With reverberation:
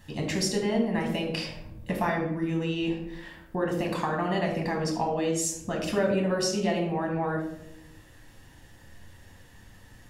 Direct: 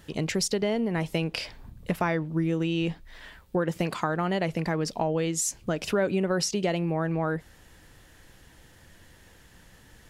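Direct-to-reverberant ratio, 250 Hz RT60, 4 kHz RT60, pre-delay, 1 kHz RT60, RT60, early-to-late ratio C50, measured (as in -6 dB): 0.0 dB, 1.3 s, 0.45 s, 9 ms, 0.65 s, 0.80 s, 5.5 dB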